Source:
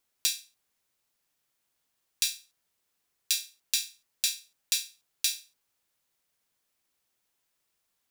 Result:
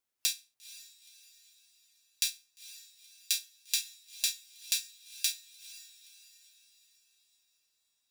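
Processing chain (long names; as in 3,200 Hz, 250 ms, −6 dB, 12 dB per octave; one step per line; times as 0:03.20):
noise reduction from a noise print of the clip's start 6 dB
feedback delay with all-pass diffusion 473 ms, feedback 47%, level −16 dB
level −2.5 dB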